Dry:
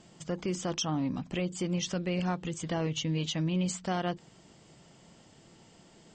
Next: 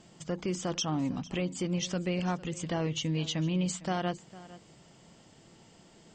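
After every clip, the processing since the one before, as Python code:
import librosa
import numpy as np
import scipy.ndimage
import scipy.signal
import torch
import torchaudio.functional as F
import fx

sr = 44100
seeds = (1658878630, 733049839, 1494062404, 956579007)

y = x + 10.0 ** (-18.5 / 20.0) * np.pad(x, (int(454 * sr / 1000.0), 0))[:len(x)]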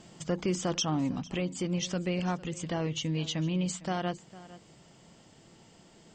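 y = fx.rider(x, sr, range_db=10, speed_s=2.0)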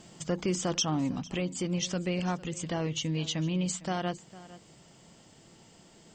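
y = fx.high_shelf(x, sr, hz=6300.0, db=5.5)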